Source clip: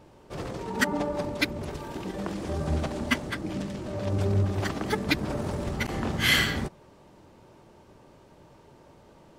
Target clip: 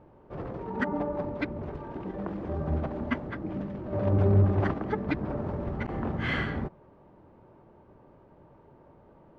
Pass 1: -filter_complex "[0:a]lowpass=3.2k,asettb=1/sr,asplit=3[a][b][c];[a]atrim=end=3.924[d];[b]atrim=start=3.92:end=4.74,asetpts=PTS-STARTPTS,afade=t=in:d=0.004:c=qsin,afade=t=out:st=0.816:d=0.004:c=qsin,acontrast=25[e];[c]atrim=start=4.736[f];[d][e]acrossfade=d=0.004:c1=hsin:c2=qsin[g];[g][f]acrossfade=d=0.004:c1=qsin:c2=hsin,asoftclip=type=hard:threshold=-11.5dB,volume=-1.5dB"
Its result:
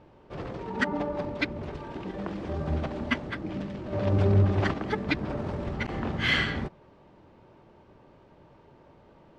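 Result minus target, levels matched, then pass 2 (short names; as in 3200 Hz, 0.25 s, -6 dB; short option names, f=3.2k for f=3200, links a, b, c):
4000 Hz band +10.5 dB
-filter_complex "[0:a]lowpass=1.4k,asettb=1/sr,asplit=3[a][b][c];[a]atrim=end=3.924[d];[b]atrim=start=3.92:end=4.74,asetpts=PTS-STARTPTS,afade=t=in:d=0.004:c=qsin,afade=t=out:st=0.816:d=0.004:c=qsin,acontrast=25[e];[c]atrim=start=4.736[f];[d][e]acrossfade=d=0.004:c1=hsin:c2=qsin[g];[g][f]acrossfade=d=0.004:c1=qsin:c2=hsin,asoftclip=type=hard:threshold=-11.5dB,volume=-1.5dB"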